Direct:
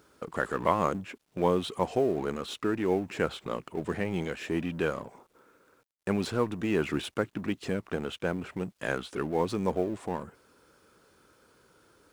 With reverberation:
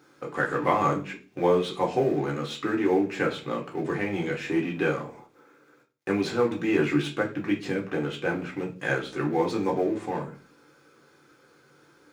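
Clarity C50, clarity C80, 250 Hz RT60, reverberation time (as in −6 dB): 12.0 dB, 18.0 dB, 0.55 s, 0.40 s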